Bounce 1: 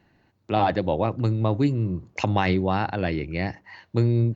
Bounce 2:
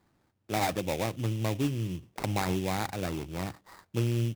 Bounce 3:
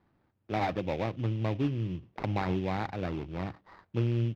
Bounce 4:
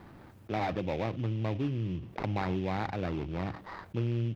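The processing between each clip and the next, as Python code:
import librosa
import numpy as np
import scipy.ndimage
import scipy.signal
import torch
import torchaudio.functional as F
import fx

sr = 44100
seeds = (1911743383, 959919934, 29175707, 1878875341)

y1 = fx.sample_hold(x, sr, seeds[0], rate_hz=3000.0, jitter_pct=20)
y1 = F.gain(torch.from_numpy(y1), -7.5).numpy()
y2 = fx.air_absorb(y1, sr, metres=270.0)
y3 = fx.env_flatten(y2, sr, amount_pct=50)
y3 = F.gain(torch.from_numpy(y3), -3.5).numpy()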